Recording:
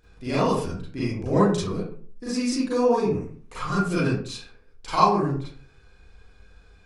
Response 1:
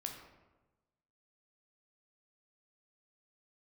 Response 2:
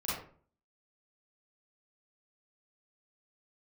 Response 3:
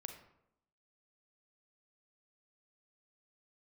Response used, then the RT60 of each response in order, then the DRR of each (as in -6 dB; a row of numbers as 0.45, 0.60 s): 2; 1.1, 0.45, 0.80 s; 2.0, -9.5, 5.5 dB